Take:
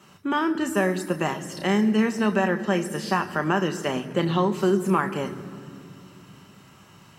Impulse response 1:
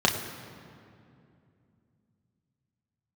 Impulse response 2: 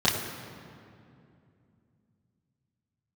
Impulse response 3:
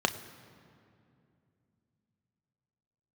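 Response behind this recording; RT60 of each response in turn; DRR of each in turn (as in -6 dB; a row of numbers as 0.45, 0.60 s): 3; 2.6, 2.6, 2.6 s; -0.5, -8.5, 7.5 dB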